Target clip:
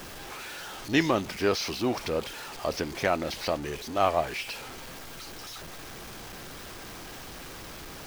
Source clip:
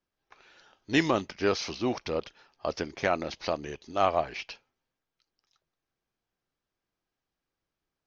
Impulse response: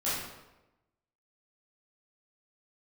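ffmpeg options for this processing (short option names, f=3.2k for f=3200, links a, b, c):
-af "aeval=exprs='val(0)+0.5*0.0178*sgn(val(0))':c=same"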